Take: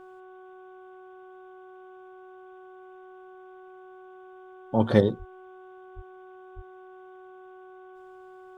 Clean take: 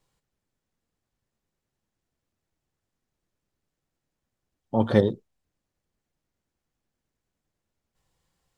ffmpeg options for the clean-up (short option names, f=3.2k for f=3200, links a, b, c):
-filter_complex "[0:a]bandreject=f=372.4:t=h:w=4,bandreject=f=744.8:t=h:w=4,bandreject=f=1.1172k:t=h:w=4,bandreject=f=1.4896k:t=h:w=4,asplit=3[a][b][c];[a]afade=t=out:st=5.18:d=0.02[d];[b]highpass=f=140:w=0.5412,highpass=f=140:w=1.3066,afade=t=in:st=5.18:d=0.02,afade=t=out:st=5.3:d=0.02[e];[c]afade=t=in:st=5.3:d=0.02[f];[d][e][f]amix=inputs=3:normalize=0,asplit=3[g][h][i];[g]afade=t=out:st=5.95:d=0.02[j];[h]highpass=f=140:w=0.5412,highpass=f=140:w=1.3066,afade=t=in:st=5.95:d=0.02,afade=t=out:st=6.07:d=0.02[k];[i]afade=t=in:st=6.07:d=0.02[l];[j][k][l]amix=inputs=3:normalize=0,asplit=3[m][n][o];[m]afade=t=out:st=6.55:d=0.02[p];[n]highpass=f=140:w=0.5412,highpass=f=140:w=1.3066,afade=t=in:st=6.55:d=0.02,afade=t=out:st=6.67:d=0.02[q];[o]afade=t=in:st=6.67:d=0.02[r];[p][q][r]amix=inputs=3:normalize=0,agate=range=-21dB:threshold=-40dB"